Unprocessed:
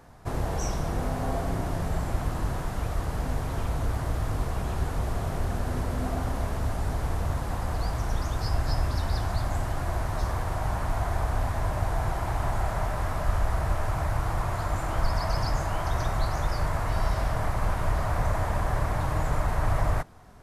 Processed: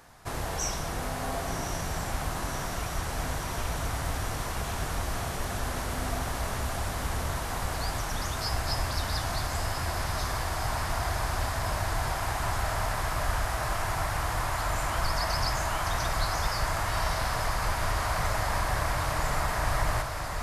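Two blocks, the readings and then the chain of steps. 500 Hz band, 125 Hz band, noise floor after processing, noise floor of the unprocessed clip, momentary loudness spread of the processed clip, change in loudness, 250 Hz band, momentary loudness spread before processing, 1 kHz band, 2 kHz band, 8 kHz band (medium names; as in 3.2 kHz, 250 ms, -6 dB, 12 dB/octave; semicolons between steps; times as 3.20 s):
-1.5 dB, -4.5 dB, -34 dBFS, -32 dBFS, 4 LU, -1.0 dB, -4.0 dB, 3 LU, +1.5 dB, +4.5 dB, +8.0 dB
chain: tilt shelf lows -6.5 dB; echo that smears into a reverb 1106 ms, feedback 78%, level -7 dB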